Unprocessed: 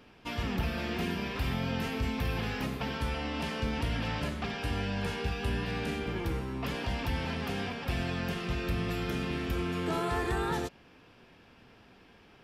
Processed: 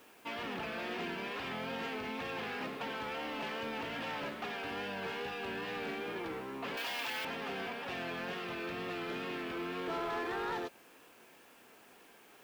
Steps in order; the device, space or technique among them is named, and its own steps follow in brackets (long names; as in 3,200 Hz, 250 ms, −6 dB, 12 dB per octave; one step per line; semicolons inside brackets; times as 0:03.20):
tape answering machine (band-pass filter 340–3,400 Hz; soft clipping −32 dBFS, distortion −15 dB; tape wow and flutter; white noise bed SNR 26 dB)
0:06.77–0:07.25: spectral tilt +4 dB per octave